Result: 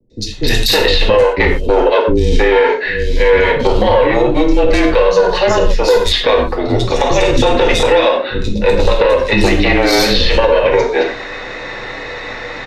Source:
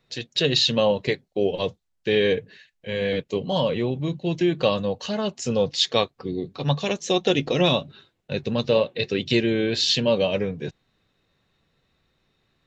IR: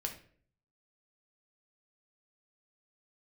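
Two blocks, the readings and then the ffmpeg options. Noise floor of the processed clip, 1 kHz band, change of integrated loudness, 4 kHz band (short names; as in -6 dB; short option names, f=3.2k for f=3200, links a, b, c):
-26 dBFS, +16.0 dB, +11.0 dB, +7.5 dB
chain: -filter_complex "[0:a]highpass=f=170:w=0.5412,highpass=f=170:w=1.3066,equalizer=f=190:t=q:w=4:g=-8,equalizer=f=330:t=q:w=4:g=4,equalizer=f=510:t=q:w=4:g=10,equalizer=f=870:t=q:w=4:g=5,equalizer=f=2k:t=q:w=4:g=10,equalizer=f=3.1k:t=q:w=4:g=-6,lowpass=f=6.1k:w=0.5412,lowpass=f=6.1k:w=1.3066,acrossover=split=510[a][b];[a]aeval=exprs='max(val(0),0)':c=same[c];[c][b]amix=inputs=2:normalize=0,aeval=exprs='0.708*(cos(1*acos(clip(val(0)/0.708,-1,1)))-cos(1*PI/2))+0.0501*(cos(5*acos(clip(val(0)/0.708,-1,1)))-cos(5*PI/2))+0.0794*(cos(7*acos(clip(val(0)/0.708,-1,1)))-cos(7*PI/2))+0.0158*(cos(8*acos(clip(val(0)/0.708,-1,1)))-cos(8*PI/2))':c=same,areverse,acompressor=mode=upward:threshold=-20dB:ratio=2.5,areverse,acrossover=split=310|4300[d][e][f];[f]adelay=100[g];[e]adelay=320[h];[d][h][g]amix=inputs=3:normalize=0,acompressor=threshold=-21dB:ratio=12,afreqshift=-27[i];[1:a]atrim=start_sample=2205,atrim=end_sample=3528,asetrate=26460,aresample=44100[j];[i][j]afir=irnorm=-1:irlink=0,alimiter=level_in=17dB:limit=-1dB:release=50:level=0:latency=1,volume=-1dB"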